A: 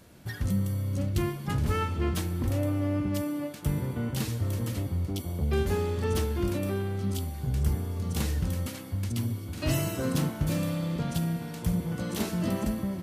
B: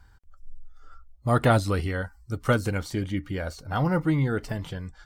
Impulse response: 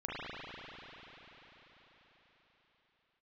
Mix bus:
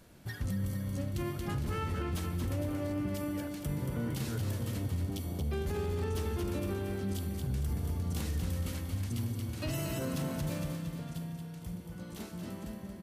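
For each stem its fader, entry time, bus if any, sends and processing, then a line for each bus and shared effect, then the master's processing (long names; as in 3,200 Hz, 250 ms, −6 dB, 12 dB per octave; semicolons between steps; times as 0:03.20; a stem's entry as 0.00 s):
0:10.44 −4 dB → 0:10.77 −13.5 dB, 0.00 s, no send, echo send −7 dB, no processing
−14.5 dB, 0.00 s, no send, no echo send, volume swells 695 ms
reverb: not used
echo: repeating echo 229 ms, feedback 51%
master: brickwall limiter −26 dBFS, peak gain reduction 8 dB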